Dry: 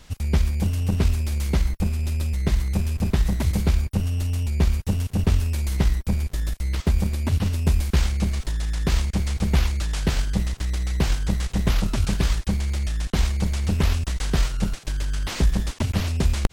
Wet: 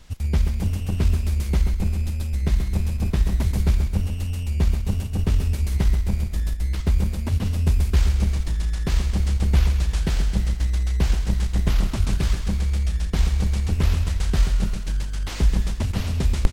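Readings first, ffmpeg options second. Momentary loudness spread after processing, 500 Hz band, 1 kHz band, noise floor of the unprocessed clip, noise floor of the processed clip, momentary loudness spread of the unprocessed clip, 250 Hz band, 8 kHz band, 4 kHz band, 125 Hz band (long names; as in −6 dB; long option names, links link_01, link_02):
4 LU, −2.5 dB, −2.5 dB, −44 dBFS, −28 dBFS, 4 LU, −2.0 dB, −2.5 dB, −2.5 dB, +1.0 dB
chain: -filter_complex "[0:a]lowshelf=frequency=83:gain=6.5,asplit=2[link_01][link_02];[link_02]aecho=0:1:132|264|396|528|660|792|924:0.398|0.235|0.139|0.0818|0.0482|0.0285|0.0168[link_03];[link_01][link_03]amix=inputs=2:normalize=0,volume=-3.5dB"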